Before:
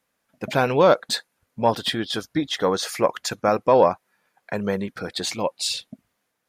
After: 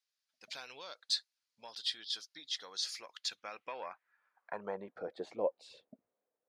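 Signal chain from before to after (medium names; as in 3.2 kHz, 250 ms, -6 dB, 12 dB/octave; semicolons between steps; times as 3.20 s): compression 5:1, threshold -18 dBFS, peak gain reduction 7 dB; band-pass sweep 4.7 kHz -> 500 Hz, 3.09–5.19 s; trim -4.5 dB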